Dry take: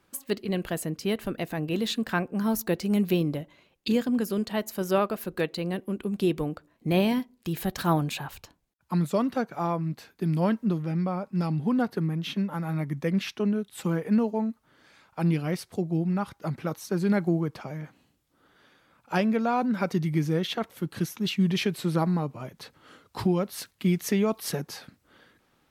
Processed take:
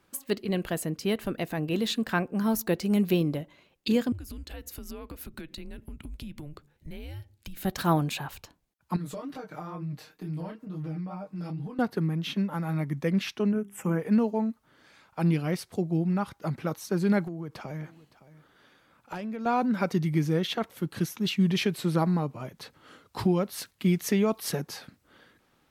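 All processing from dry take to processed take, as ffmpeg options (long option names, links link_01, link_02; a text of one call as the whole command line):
ffmpeg -i in.wav -filter_complex "[0:a]asettb=1/sr,asplit=3[link_01][link_02][link_03];[link_01]atrim=end=4.124[link_04];[link_02]atrim=start=4.12:end=7.65,asetpts=PTS-STARTPTS,afade=type=in:duration=0.004:curve=qsin,afade=type=out:start_time=3.526:duration=0.004:curve=qsin,afreqshift=-150,equalizer=frequency=940:width=1.1:gain=-6.5,acompressor=threshold=-36dB:ratio=10:attack=3.2:release=140:knee=1:detection=peak[link_05];[link_03]atrim=start=7.646[link_06];[link_04][link_05]acrossfade=duration=0.004:curve1=hsin:curve2=qsin[link_07];[link_07][link_06]acrossfade=duration=0.004:curve1=qsin:curve2=hsin,asettb=1/sr,asplit=3[link_08][link_09][link_10];[link_08]atrim=end=8.964[link_11];[link_09]atrim=start=8.96:end=11.79,asetpts=PTS-STARTPTS,afade=type=in:duration=0.004:curve=qsin,afade=type=out:start_time=2.826:duration=0.004:curve=qsin,flanger=delay=20:depth=7.9:speed=2.2,acompressor=threshold=-36dB:ratio=6:attack=3.2:release=140:knee=1:detection=peak,aecho=1:1:6.5:0.8,atrim=end_sample=124803[link_12];[link_10]atrim=start=11.786[link_13];[link_11][link_12]acrossfade=duration=0.004:curve1=hsin:curve2=qsin[link_14];[link_14][link_13]acrossfade=duration=0.004:curve1=qsin:curve2=hsin,asettb=1/sr,asplit=3[link_15][link_16][link_17];[link_15]atrim=end=13.524[link_18];[link_16]atrim=start=13.52:end=14,asetpts=PTS-STARTPTS,afade=type=in:duration=0.004:curve=qsin,afade=type=out:start_time=0.476:duration=0.004:curve=qsin,asuperstop=centerf=4100:order=4:qfactor=1.1,bandreject=frequency=50:width_type=h:width=6,bandreject=frequency=100:width_type=h:width=6,bandreject=frequency=150:width_type=h:width=6,bandreject=frequency=200:width_type=h:width=6,bandreject=frequency=250:width_type=h:width=6,bandreject=frequency=300:width_type=h:width=6,bandreject=frequency=350:width_type=h:width=6,bandreject=frequency=400:width_type=h:width=6[link_19];[link_17]atrim=start=13.996[link_20];[link_18][link_19]acrossfade=duration=0.004:curve1=hsin:curve2=qsin[link_21];[link_21][link_20]acrossfade=duration=0.004:curve1=qsin:curve2=hsin,asettb=1/sr,asplit=3[link_22][link_23][link_24];[link_22]atrim=end=17.244[link_25];[link_23]atrim=start=17.24:end=19.46,asetpts=PTS-STARTPTS,afade=type=in:duration=0.004:curve=qsin,afade=type=out:start_time=2.216:duration=0.004:curve=qsin,acompressor=threshold=-31dB:ratio=16:attack=3.2:release=140:knee=1:detection=peak,asoftclip=type=hard:threshold=-28dB,aecho=1:1:564:0.126,atrim=end_sample=97902[link_26];[link_24]atrim=start=19.456[link_27];[link_25][link_26]acrossfade=duration=0.004:curve1=hsin:curve2=qsin[link_28];[link_28][link_27]acrossfade=duration=0.004:curve1=qsin:curve2=hsin" out.wav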